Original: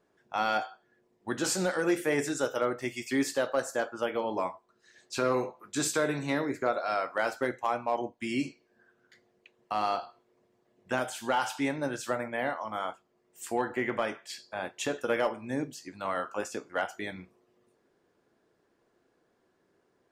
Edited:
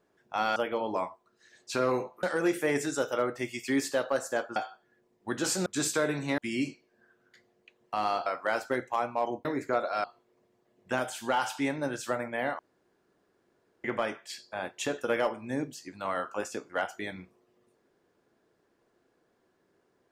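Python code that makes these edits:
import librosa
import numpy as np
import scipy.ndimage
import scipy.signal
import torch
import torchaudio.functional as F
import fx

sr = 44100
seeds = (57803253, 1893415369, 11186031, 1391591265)

y = fx.edit(x, sr, fx.swap(start_s=0.56, length_s=1.1, other_s=3.99, other_length_s=1.67),
    fx.swap(start_s=6.38, length_s=0.59, other_s=8.16, other_length_s=1.88),
    fx.room_tone_fill(start_s=12.59, length_s=1.25), tone=tone)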